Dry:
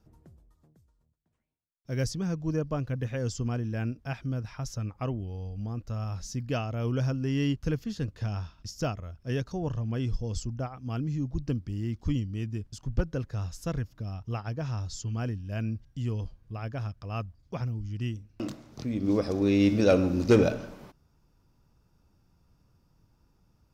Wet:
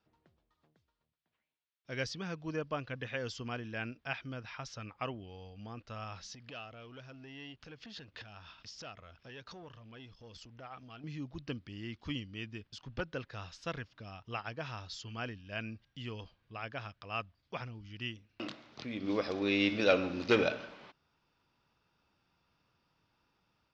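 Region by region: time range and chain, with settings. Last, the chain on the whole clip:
6.34–11.04 s: compression, threshold -41 dBFS + waveshaping leveller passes 1 + tape noise reduction on one side only encoder only
whole clip: tilt EQ +4.5 dB/octave; level rider gain up to 5 dB; low-pass 3.6 kHz 24 dB/octave; trim -5.5 dB

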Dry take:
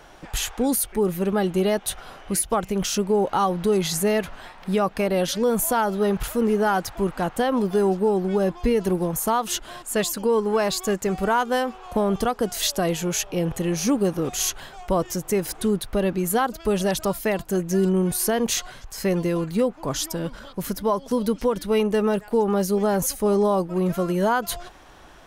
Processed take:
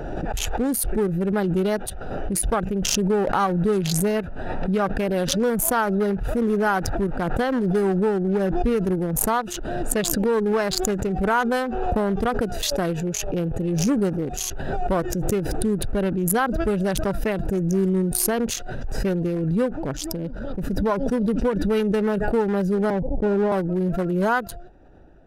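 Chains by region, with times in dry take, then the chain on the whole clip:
22.90–23.52 s: steep low-pass 1 kHz 96 dB/octave + expander -36 dBFS
whole clip: local Wiener filter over 41 samples; dynamic bell 1.5 kHz, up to +5 dB, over -44 dBFS, Q 2.8; swell ahead of each attack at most 24 dB/s

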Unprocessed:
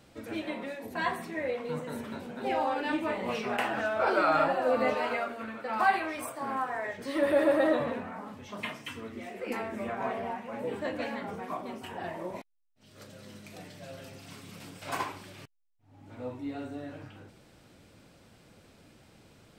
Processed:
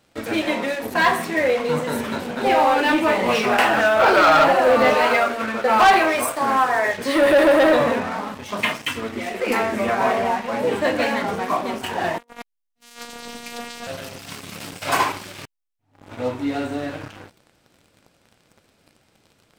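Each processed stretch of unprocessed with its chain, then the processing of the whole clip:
5.54–6.24 s: peaking EQ 390 Hz +5.5 dB 2.2 oct + band-stop 300 Hz, Q 7.5
12.18–13.87 s: compressor with a negative ratio -44 dBFS, ratio -0.5 + robot voice 237 Hz
whole clip: waveshaping leveller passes 3; bass shelf 370 Hz -5.5 dB; trim +4.5 dB

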